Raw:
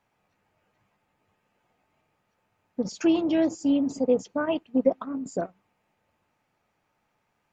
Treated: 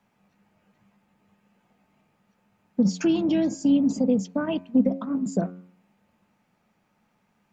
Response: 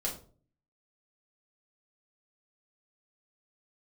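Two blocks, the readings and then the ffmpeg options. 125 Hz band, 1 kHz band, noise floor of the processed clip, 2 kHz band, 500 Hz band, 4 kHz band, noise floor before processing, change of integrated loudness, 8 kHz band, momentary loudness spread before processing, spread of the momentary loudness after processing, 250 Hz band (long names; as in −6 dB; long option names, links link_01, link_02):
+11.0 dB, −2.5 dB, −70 dBFS, −1.5 dB, −3.0 dB, +1.0 dB, −75 dBFS, +2.0 dB, can't be measured, 10 LU, 7 LU, +3.5 dB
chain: -filter_complex "[0:a]acrossover=split=250|3000[link_01][link_02][link_03];[link_02]acompressor=threshold=-29dB:ratio=6[link_04];[link_01][link_04][link_03]amix=inputs=3:normalize=0,equalizer=frequency=200:width_type=o:width=0.5:gain=14,bandreject=frequency=90.31:width_type=h:width=4,bandreject=frequency=180.62:width_type=h:width=4,bandreject=frequency=270.93:width_type=h:width=4,bandreject=frequency=361.24:width_type=h:width=4,bandreject=frequency=451.55:width_type=h:width=4,bandreject=frequency=541.86:width_type=h:width=4,bandreject=frequency=632.17:width_type=h:width=4,bandreject=frequency=722.48:width_type=h:width=4,bandreject=frequency=812.79:width_type=h:width=4,bandreject=frequency=903.1:width_type=h:width=4,bandreject=frequency=993.41:width_type=h:width=4,bandreject=frequency=1083.72:width_type=h:width=4,bandreject=frequency=1174.03:width_type=h:width=4,bandreject=frequency=1264.34:width_type=h:width=4,bandreject=frequency=1354.65:width_type=h:width=4,bandreject=frequency=1444.96:width_type=h:width=4,bandreject=frequency=1535.27:width_type=h:width=4,bandreject=frequency=1625.58:width_type=h:width=4,bandreject=frequency=1715.89:width_type=h:width=4,bandreject=frequency=1806.2:width_type=h:width=4,bandreject=frequency=1896.51:width_type=h:width=4,bandreject=frequency=1986.82:width_type=h:width=4,bandreject=frequency=2077.13:width_type=h:width=4,bandreject=frequency=2167.44:width_type=h:width=4,bandreject=frequency=2257.75:width_type=h:width=4,bandreject=frequency=2348.06:width_type=h:width=4,bandreject=frequency=2438.37:width_type=h:width=4,bandreject=frequency=2528.68:width_type=h:width=4,volume=3dB"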